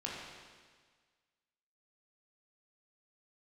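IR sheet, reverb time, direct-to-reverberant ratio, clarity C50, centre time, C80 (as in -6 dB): 1.6 s, -5.0 dB, -0.5 dB, 95 ms, 1.5 dB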